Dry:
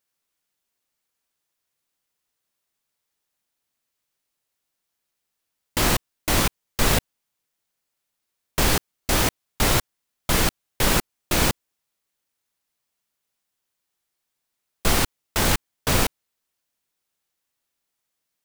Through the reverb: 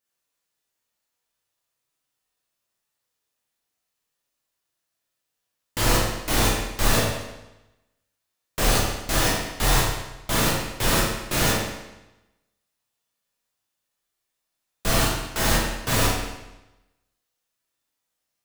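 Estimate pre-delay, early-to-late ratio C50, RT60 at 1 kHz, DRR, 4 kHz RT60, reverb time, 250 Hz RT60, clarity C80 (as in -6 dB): 9 ms, 0.5 dB, 1.0 s, -5.5 dB, 0.90 s, 1.0 s, 1.0 s, 3.5 dB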